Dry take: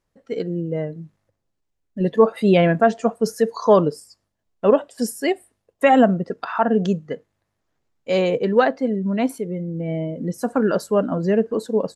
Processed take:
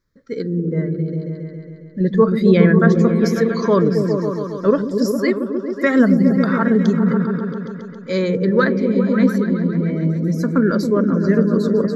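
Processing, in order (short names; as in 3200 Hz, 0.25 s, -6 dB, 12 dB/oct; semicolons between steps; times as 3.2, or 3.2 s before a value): fixed phaser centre 2800 Hz, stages 6; repeats that get brighter 0.136 s, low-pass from 200 Hz, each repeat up 1 oct, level 0 dB; gain +4.5 dB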